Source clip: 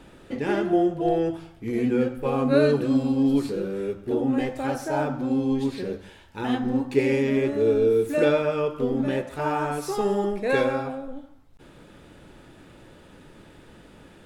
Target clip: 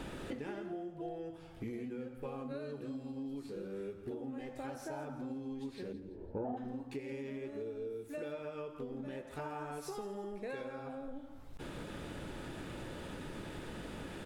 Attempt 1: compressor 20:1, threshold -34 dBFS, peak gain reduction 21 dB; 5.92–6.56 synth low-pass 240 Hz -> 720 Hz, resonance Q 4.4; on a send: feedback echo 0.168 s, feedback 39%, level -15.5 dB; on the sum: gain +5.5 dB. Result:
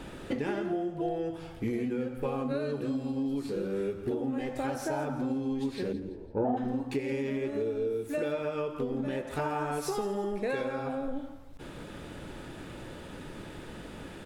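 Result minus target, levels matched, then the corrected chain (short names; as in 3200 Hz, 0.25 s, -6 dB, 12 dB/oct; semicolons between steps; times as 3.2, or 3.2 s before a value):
compressor: peak gain reduction -10.5 dB
compressor 20:1, threshold -45 dBFS, peak gain reduction 31.5 dB; 5.92–6.56 synth low-pass 240 Hz -> 720 Hz, resonance Q 4.4; on a send: feedback echo 0.168 s, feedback 39%, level -15.5 dB; on the sum: gain +5.5 dB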